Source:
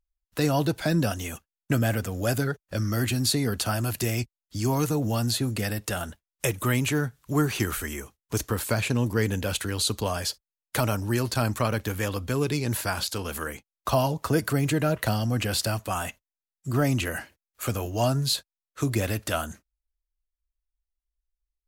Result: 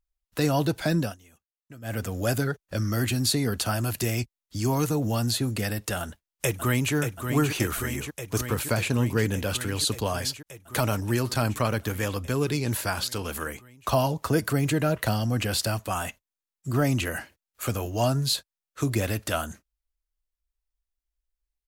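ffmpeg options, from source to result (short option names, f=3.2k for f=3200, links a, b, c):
-filter_complex "[0:a]asplit=2[a][b];[b]afade=t=in:st=6.01:d=0.01,afade=t=out:st=6.94:d=0.01,aecho=0:1:580|1160|1740|2320|2900|3480|4060|4640|5220|5800|6380|6960:0.446684|0.357347|0.285877|0.228702|0.182962|0.146369|0.117095|0.0936763|0.0749411|0.0599529|0.0479623|0.0383698[c];[a][c]amix=inputs=2:normalize=0,asplit=3[d][e][f];[d]atrim=end=1.17,asetpts=PTS-STARTPTS,afade=t=out:st=0.88:d=0.29:c=qsin:silence=0.0794328[g];[e]atrim=start=1.17:end=1.82,asetpts=PTS-STARTPTS,volume=-22dB[h];[f]atrim=start=1.82,asetpts=PTS-STARTPTS,afade=t=in:d=0.29:c=qsin:silence=0.0794328[i];[g][h][i]concat=n=3:v=0:a=1"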